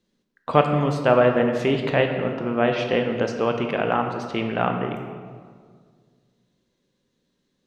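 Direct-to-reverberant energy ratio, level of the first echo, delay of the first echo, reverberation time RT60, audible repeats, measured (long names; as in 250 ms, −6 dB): 4.0 dB, no echo audible, no echo audible, 1.9 s, no echo audible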